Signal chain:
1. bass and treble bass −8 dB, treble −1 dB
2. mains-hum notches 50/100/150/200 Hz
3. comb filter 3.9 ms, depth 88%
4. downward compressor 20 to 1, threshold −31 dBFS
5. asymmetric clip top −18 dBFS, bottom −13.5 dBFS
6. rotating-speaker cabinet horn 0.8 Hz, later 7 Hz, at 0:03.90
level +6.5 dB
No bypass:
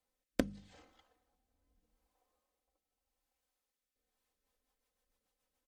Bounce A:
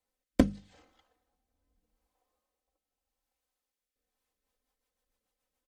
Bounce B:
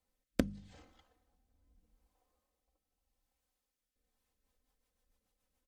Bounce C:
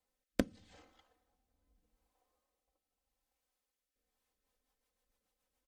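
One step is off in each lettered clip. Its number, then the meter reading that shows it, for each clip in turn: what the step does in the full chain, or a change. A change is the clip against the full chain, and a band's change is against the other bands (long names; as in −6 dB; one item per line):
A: 4, average gain reduction 9.5 dB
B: 1, 125 Hz band +5.5 dB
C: 2, change in momentary loudness spread −8 LU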